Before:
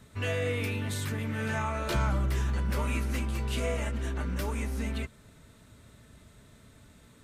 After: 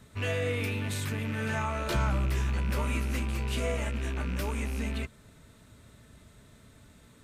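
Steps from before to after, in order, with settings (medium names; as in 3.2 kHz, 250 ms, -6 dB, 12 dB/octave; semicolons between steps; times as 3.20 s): rattle on loud lows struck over -32 dBFS, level -32 dBFS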